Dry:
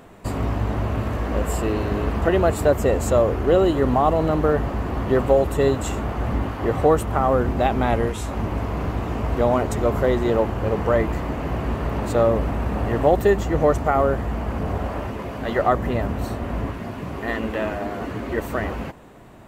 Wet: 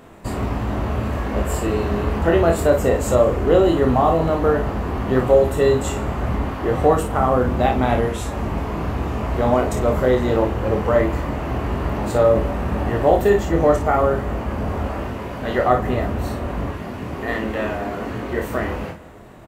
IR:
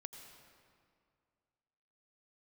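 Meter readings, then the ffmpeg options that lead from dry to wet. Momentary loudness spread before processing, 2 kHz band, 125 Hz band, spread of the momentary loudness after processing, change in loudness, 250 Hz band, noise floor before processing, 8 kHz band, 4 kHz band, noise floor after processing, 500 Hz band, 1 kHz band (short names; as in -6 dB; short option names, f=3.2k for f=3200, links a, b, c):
9 LU, +2.0 dB, +1.5 dB, 10 LU, +2.0 dB, +2.0 dB, -32 dBFS, +2.0 dB, +2.0 dB, -31 dBFS, +2.5 dB, +2.0 dB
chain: -filter_complex "[0:a]aecho=1:1:24|54:0.596|0.422,asplit=2[a][b];[1:a]atrim=start_sample=2205,adelay=42[c];[b][c]afir=irnorm=-1:irlink=0,volume=-8dB[d];[a][d]amix=inputs=2:normalize=0"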